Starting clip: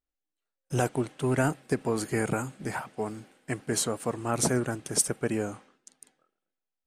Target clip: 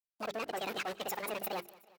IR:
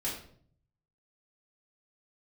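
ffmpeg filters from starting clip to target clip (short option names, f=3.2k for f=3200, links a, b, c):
-af "dynaudnorm=f=520:g=5:m=4dB,acrusher=bits=5:mix=0:aa=0.000001,areverse,acompressor=threshold=-31dB:ratio=8,areverse,atempo=2,equalizer=f=2.4k:t=o:w=1.7:g=5.5,asetrate=76440,aresample=44100,afftdn=nr=13:nf=-43,asoftclip=type=tanh:threshold=-34.5dB,highpass=f=180:p=1,equalizer=f=240:t=o:w=0.53:g=-7.5,bandreject=f=50:t=h:w=6,bandreject=f=100:t=h:w=6,bandreject=f=150:t=h:w=6,bandreject=f=200:t=h:w=6,bandreject=f=250:t=h:w=6,bandreject=f=300:t=h:w=6,bandreject=f=350:t=h:w=6,bandreject=f=400:t=h:w=6,aecho=1:1:184|368|552|736:0.0794|0.0469|0.0277|0.0163,volume=3.5dB"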